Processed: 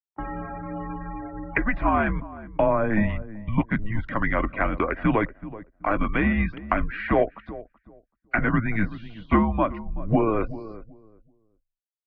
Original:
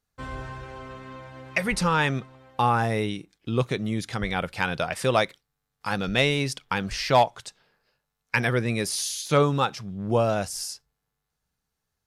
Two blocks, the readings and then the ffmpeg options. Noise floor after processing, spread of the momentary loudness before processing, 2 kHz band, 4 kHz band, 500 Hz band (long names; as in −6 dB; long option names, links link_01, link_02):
−85 dBFS, 16 LU, 0.0 dB, −18.0 dB, −0.5 dB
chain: -filter_complex "[0:a]bandreject=frequency=103.2:width_type=h:width=4,bandreject=frequency=206.4:width_type=h:width=4,afftfilt=real='re*gte(hypot(re,im),0.0112)':imag='im*gte(hypot(re,im),0.0112)':win_size=1024:overlap=0.75,anlmdn=0.0398,equalizer=frequency=180:width=2.5:gain=15,acrossover=split=280|660[link_01][link_02][link_03];[link_01]acompressor=threshold=-24dB:ratio=4[link_04];[link_02]acompressor=threshold=-30dB:ratio=4[link_05];[link_03]acompressor=threshold=-28dB:ratio=4[link_06];[link_04][link_05][link_06]amix=inputs=3:normalize=0,aecho=1:1:2.3:0.33,acompressor=mode=upward:threshold=-30dB:ratio=2.5,asoftclip=type=hard:threshold=-13dB,asplit=2[link_07][link_08];[link_08]adelay=379,lowpass=frequency=840:poles=1,volume=-14dB,asplit=2[link_09][link_10];[link_10]adelay=379,lowpass=frequency=840:poles=1,volume=0.25,asplit=2[link_11][link_12];[link_12]adelay=379,lowpass=frequency=840:poles=1,volume=0.25[link_13];[link_09][link_11][link_13]amix=inputs=3:normalize=0[link_14];[link_07][link_14]amix=inputs=2:normalize=0,highpass=frequency=220:width_type=q:width=0.5412,highpass=frequency=220:width_type=q:width=1.307,lowpass=frequency=2400:width_type=q:width=0.5176,lowpass=frequency=2400:width_type=q:width=0.7071,lowpass=frequency=2400:width_type=q:width=1.932,afreqshift=-220,volume=5.5dB" -ar 48000 -c:a aac -b:a 32k